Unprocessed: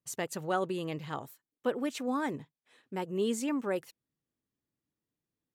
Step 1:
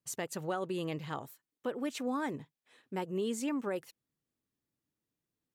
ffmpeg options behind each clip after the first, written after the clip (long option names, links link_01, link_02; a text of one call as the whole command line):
ffmpeg -i in.wav -af "alimiter=level_in=1.5dB:limit=-24dB:level=0:latency=1:release=230,volume=-1.5dB" out.wav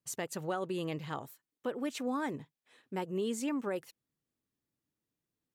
ffmpeg -i in.wav -af anull out.wav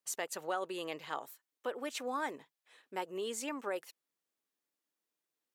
ffmpeg -i in.wav -af "highpass=500,volume=1.5dB" out.wav